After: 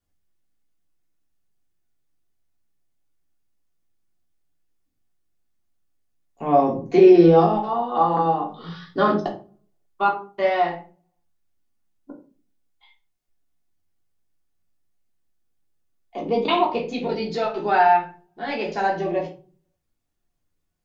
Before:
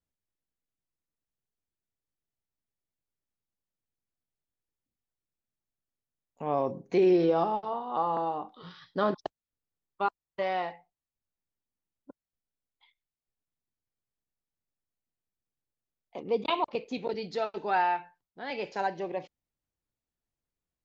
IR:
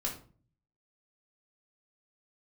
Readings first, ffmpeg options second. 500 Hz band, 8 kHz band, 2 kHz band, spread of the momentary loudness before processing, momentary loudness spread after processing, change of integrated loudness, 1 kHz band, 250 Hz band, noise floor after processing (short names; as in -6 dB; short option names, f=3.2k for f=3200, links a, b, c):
+10.0 dB, n/a, +9.0 dB, 14 LU, 18 LU, +10.5 dB, +10.0 dB, +11.5 dB, -74 dBFS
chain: -filter_complex "[1:a]atrim=start_sample=2205,asetrate=52920,aresample=44100[a];[0:a][a]afir=irnorm=-1:irlink=0,volume=7.5dB"